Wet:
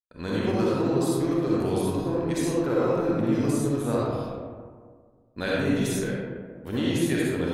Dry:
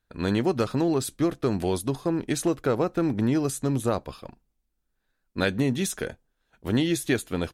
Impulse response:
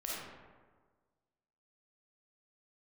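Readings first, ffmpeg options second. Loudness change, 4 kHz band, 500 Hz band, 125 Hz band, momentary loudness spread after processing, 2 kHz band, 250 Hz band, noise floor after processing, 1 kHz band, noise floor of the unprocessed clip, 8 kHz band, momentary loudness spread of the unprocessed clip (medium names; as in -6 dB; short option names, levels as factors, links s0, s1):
+0.5 dB, -1.5 dB, +1.5 dB, 0.0 dB, 9 LU, 0.0 dB, +1.0 dB, -57 dBFS, +0.5 dB, -77 dBFS, -3.0 dB, 7 LU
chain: -filter_complex "[0:a]agate=range=0.0224:threshold=0.00501:ratio=3:detection=peak[s0];[1:a]atrim=start_sample=2205,asetrate=35721,aresample=44100[s1];[s0][s1]afir=irnorm=-1:irlink=0,volume=0.668"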